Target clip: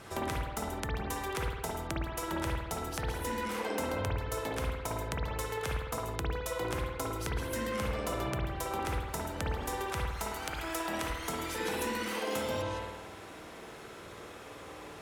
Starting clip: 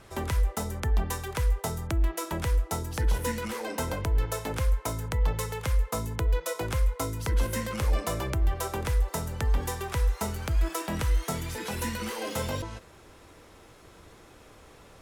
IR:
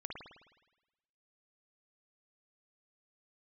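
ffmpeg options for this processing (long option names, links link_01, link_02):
-filter_complex "[0:a]asetnsamples=nb_out_samples=441:pad=0,asendcmd='10.07 highpass f 550;11.1 highpass f 200',highpass=frequency=110:poles=1,acompressor=threshold=-39dB:ratio=4[link_01];[1:a]atrim=start_sample=2205[link_02];[link_01][link_02]afir=irnorm=-1:irlink=0,volume=8.5dB"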